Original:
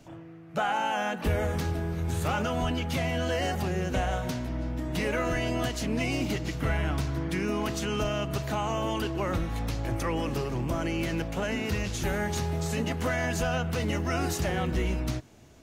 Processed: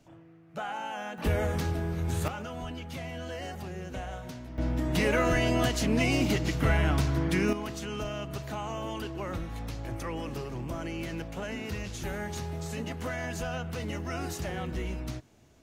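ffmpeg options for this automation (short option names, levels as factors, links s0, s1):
-af "asetnsamples=n=441:p=0,asendcmd='1.18 volume volume -0.5dB;2.28 volume volume -9.5dB;4.58 volume volume 3dB;7.53 volume volume -6dB',volume=0.398"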